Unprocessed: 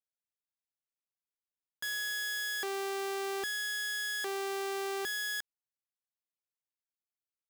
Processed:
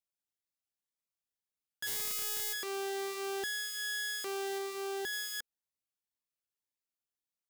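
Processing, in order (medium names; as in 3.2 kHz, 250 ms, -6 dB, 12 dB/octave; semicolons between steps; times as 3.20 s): 1.86–2.52 s: spectral peaks clipped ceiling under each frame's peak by 29 dB; 4.58–5.13 s: hard clipper -33 dBFS, distortion -27 dB; Shepard-style phaser rising 1.9 Hz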